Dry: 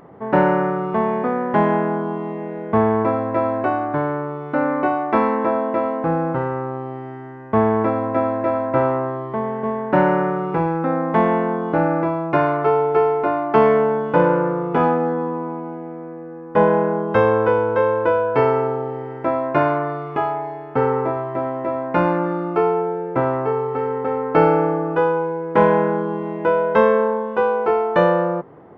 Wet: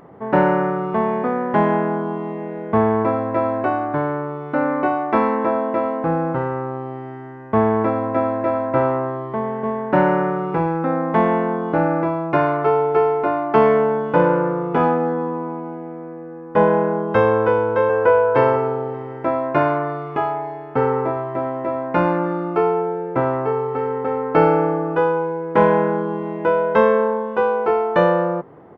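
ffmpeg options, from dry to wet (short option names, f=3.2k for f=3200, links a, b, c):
-filter_complex "[0:a]asplit=2[a][b];[b]afade=t=in:st=17.3:d=0.01,afade=t=out:st=17.97:d=0.01,aecho=0:1:590|1180:0.668344|0.0668344[c];[a][c]amix=inputs=2:normalize=0"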